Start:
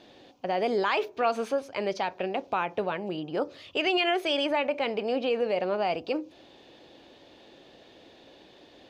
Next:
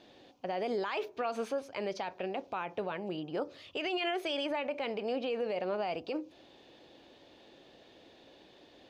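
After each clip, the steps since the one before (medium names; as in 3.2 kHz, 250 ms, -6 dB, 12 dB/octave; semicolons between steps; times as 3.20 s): peak limiter -21 dBFS, peak gain reduction 6.5 dB; trim -4.5 dB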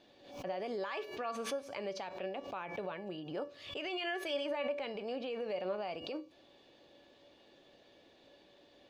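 feedback comb 570 Hz, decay 0.38 s, mix 80%; swell ahead of each attack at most 85 dB/s; trim +7.5 dB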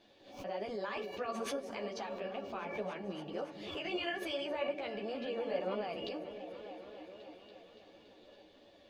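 delay with an opening low-pass 284 ms, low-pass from 400 Hz, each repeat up 1 oct, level -6 dB; chorus voices 6, 1.5 Hz, delay 12 ms, depth 3 ms; trim +2.5 dB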